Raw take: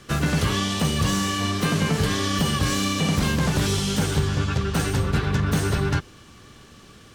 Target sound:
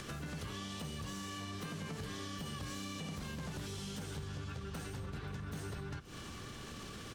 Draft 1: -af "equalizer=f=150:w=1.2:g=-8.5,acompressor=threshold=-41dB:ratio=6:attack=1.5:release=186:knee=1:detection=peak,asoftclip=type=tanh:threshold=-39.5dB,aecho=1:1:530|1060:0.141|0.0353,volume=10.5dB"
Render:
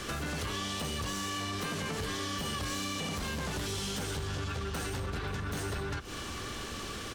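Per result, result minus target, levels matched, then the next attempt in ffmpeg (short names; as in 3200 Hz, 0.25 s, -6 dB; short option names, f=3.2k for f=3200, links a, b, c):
compressor: peak gain reduction -11.5 dB; 125 Hz band -3.0 dB
-af "equalizer=f=150:w=1.2:g=-8.5,acompressor=threshold=-53dB:ratio=6:attack=1.5:release=186:knee=1:detection=peak,asoftclip=type=tanh:threshold=-39.5dB,aecho=1:1:530|1060:0.141|0.0353,volume=10.5dB"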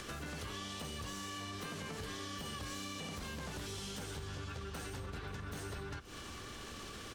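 125 Hz band -3.0 dB
-af "acompressor=threshold=-53dB:ratio=6:attack=1.5:release=186:knee=1:detection=peak,asoftclip=type=tanh:threshold=-39.5dB,aecho=1:1:530|1060:0.141|0.0353,volume=10.5dB"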